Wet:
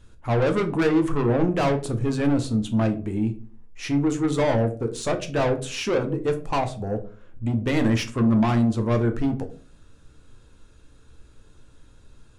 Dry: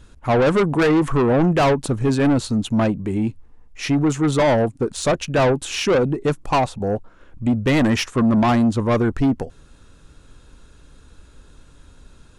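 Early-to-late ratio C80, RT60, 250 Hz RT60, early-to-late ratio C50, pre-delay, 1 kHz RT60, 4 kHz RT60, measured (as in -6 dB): 18.5 dB, 0.40 s, 0.55 s, 14.0 dB, 9 ms, 0.35 s, 0.25 s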